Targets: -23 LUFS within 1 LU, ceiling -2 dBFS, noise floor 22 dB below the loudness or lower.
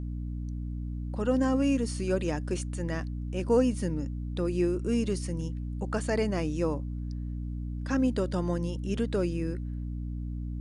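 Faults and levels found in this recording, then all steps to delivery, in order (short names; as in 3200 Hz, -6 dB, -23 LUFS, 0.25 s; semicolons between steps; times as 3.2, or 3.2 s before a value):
hum 60 Hz; harmonics up to 300 Hz; hum level -32 dBFS; loudness -30.5 LUFS; peak -13.5 dBFS; loudness target -23.0 LUFS
-> notches 60/120/180/240/300 Hz; gain +7.5 dB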